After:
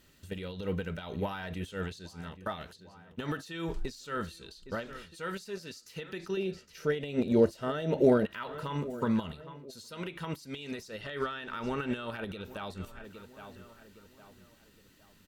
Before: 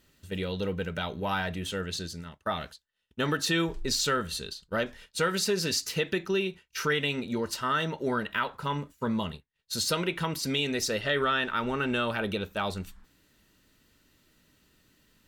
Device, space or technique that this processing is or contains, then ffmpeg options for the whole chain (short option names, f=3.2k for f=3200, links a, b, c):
de-esser from a sidechain: -filter_complex "[0:a]asettb=1/sr,asplit=3[a][b][c];[a]atrim=end=6.374[d];[b]atrim=start=6.37:end=8.26,asetpts=PTS-STARTPTS,afade=t=in:d=0.004:c=qsin,afade=t=out:st=1.886:d=0.004:c=qsin,lowshelf=f=800:t=q:w=3:g=6.5[e];[c]atrim=start=8.256[f];[d][e]acrossfade=d=0.004:c1=hsin:c2=qsin[g];[g][f]acrossfade=d=0.004:c1=qsin:c2=hsin,asplit=2[h][i];[i]adelay=812,lowpass=f=2.4k:p=1,volume=-19.5dB,asplit=2[j][k];[k]adelay=812,lowpass=f=2.4k:p=1,volume=0.41,asplit=2[l][m];[m]adelay=812,lowpass=f=2.4k:p=1,volume=0.41[n];[h][j][l][n]amix=inputs=4:normalize=0,asplit=2[o][p];[p]highpass=5.9k,apad=whole_len=781014[q];[o][q]sidechaincompress=threshold=-57dB:ratio=4:attack=0.72:release=81,volume=2dB"